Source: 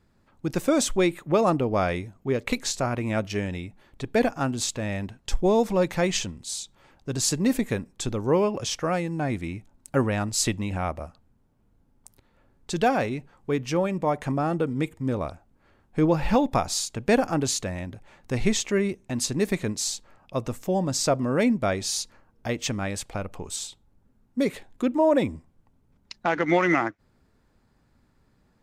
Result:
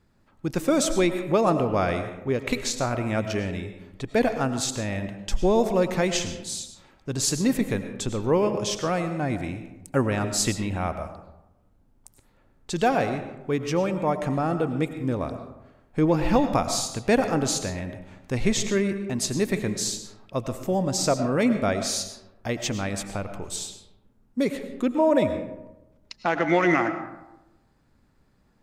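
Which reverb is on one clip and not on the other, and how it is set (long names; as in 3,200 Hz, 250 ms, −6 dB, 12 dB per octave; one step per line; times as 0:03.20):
comb and all-pass reverb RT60 1 s, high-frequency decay 0.45×, pre-delay 65 ms, DRR 8.5 dB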